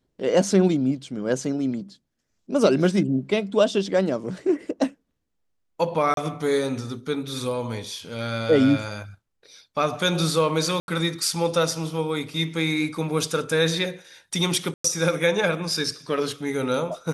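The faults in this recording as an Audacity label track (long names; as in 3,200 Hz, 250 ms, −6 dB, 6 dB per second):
6.140000	6.170000	drop-out 32 ms
10.800000	10.880000	drop-out 81 ms
14.740000	14.840000	drop-out 104 ms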